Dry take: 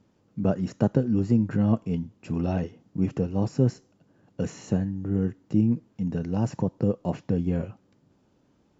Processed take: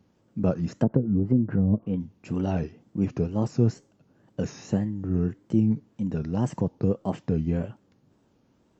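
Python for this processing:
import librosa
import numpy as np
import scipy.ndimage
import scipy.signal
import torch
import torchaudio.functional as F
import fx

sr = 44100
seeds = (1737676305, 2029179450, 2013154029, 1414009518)

y = fx.env_lowpass_down(x, sr, base_hz=460.0, full_db=-17.5, at=(0.68, 2.01))
y = fx.wow_flutter(y, sr, seeds[0], rate_hz=2.1, depth_cents=150.0)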